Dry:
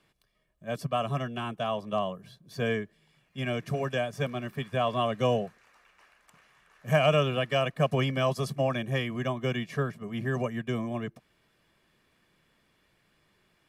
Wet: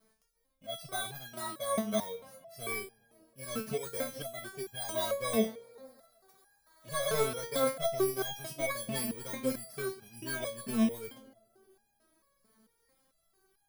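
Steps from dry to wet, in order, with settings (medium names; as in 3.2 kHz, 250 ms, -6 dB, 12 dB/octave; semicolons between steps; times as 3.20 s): bit-reversed sample order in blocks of 16 samples; 6.95–7.54 s: treble shelf 7.6 kHz -5 dB; in parallel at -3.5 dB: sine folder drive 8 dB, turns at -11 dBFS; on the sum: vibrato 0.6 Hz 8 cents; on a send: tape echo 196 ms, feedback 71%, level -17 dB, low-pass 1.1 kHz; on the sum: resonator arpeggio 4.5 Hz 220–810 Hz; trim +2 dB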